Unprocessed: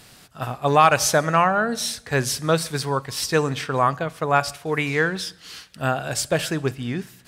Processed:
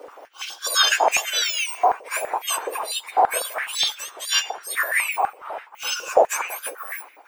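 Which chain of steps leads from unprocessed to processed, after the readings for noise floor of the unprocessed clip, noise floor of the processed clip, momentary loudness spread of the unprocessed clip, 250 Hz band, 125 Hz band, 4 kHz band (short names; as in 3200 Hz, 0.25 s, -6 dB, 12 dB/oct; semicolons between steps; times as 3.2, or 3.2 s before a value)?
-50 dBFS, -48 dBFS, 12 LU, -21.0 dB, under -35 dB, +6.5 dB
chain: spectrum mirrored in octaves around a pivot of 2000 Hz; stepped high-pass 12 Hz 520–2200 Hz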